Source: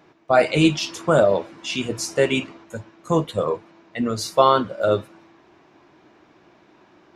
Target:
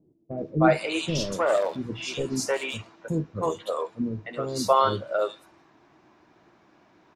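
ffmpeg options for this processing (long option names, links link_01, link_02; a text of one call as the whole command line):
ffmpeg -i in.wav -filter_complex "[0:a]asplit=3[link_01][link_02][link_03];[link_01]afade=type=out:start_time=0.95:duration=0.02[link_04];[link_02]aeval=exprs='clip(val(0),-1,0.188)':channel_layout=same,afade=type=in:start_time=0.95:duration=0.02,afade=type=out:start_time=3.12:duration=0.02[link_05];[link_03]afade=type=in:start_time=3.12:duration=0.02[link_06];[link_04][link_05][link_06]amix=inputs=3:normalize=0,acrossover=split=410|2900[link_07][link_08][link_09];[link_08]adelay=310[link_10];[link_09]adelay=380[link_11];[link_07][link_10][link_11]amix=inputs=3:normalize=0,volume=-3.5dB" out.wav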